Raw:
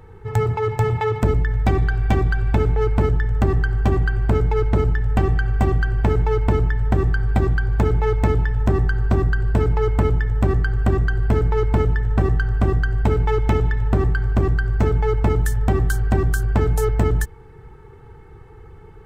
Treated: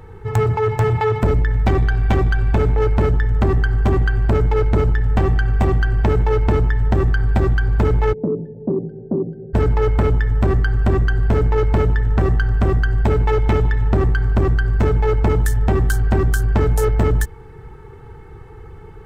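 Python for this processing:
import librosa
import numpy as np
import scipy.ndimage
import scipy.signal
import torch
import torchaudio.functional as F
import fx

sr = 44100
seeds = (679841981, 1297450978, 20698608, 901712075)

y = fx.ellip_bandpass(x, sr, low_hz=160.0, high_hz=560.0, order=3, stop_db=40, at=(8.12, 9.53), fade=0.02)
y = 10.0 ** (-13.5 / 20.0) * np.tanh(y / 10.0 ** (-13.5 / 20.0))
y = F.gain(torch.from_numpy(y), 4.5).numpy()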